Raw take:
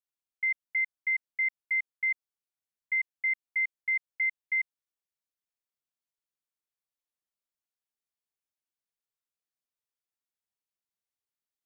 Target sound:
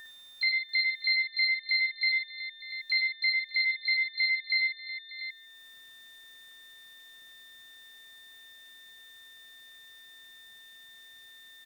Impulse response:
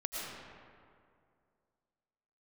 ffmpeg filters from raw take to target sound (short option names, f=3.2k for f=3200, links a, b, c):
-filter_complex "[0:a]acompressor=mode=upward:threshold=-42dB:ratio=2.5,aeval=exprs='val(0)+0.00447*sin(2*PI*1800*n/s)':c=same,asplit=2[a][b];[b]asetrate=88200,aresample=44100,atempo=0.5,volume=-6dB[c];[a][c]amix=inputs=2:normalize=0,aecho=1:1:57|67|79|108|591|691:0.531|0.266|0.126|0.335|0.126|0.251,asplit=2[d][e];[1:a]atrim=start_sample=2205,afade=t=out:st=0.21:d=0.01,atrim=end_sample=9702[f];[e][f]afir=irnorm=-1:irlink=0,volume=-25dB[g];[d][g]amix=inputs=2:normalize=0"